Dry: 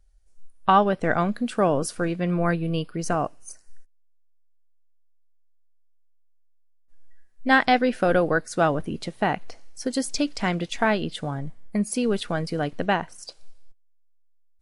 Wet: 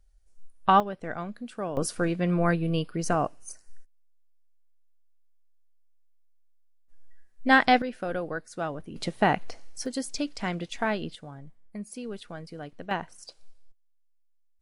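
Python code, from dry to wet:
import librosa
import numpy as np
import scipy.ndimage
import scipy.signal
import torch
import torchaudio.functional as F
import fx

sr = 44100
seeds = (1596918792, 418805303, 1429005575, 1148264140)

y = fx.gain(x, sr, db=fx.steps((0.0, -2.0), (0.8, -12.0), (1.77, -1.0), (7.82, -11.0), (8.96, 1.0), (9.86, -6.0), (11.15, -13.5), (12.91, -6.0)))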